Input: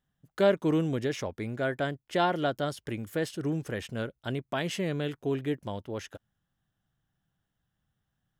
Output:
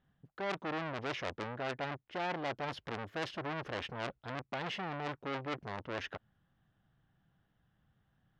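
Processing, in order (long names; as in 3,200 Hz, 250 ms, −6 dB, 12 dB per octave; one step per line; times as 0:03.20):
low-shelf EQ 77 Hz −4.5 dB
reversed playback
downward compressor 16 to 1, threshold −35 dBFS, peak gain reduction 17.5 dB
reversed playback
high-frequency loss of the air 280 metres
saturating transformer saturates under 2,800 Hz
level +8 dB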